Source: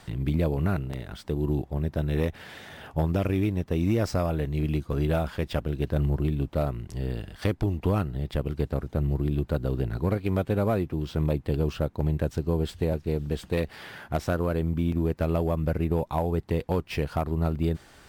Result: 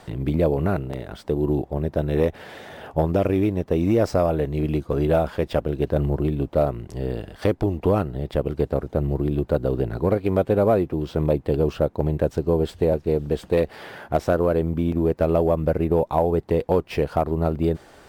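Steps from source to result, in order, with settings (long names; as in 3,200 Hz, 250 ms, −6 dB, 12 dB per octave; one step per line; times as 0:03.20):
parametric band 530 Hz +9.5 dB 2 octaves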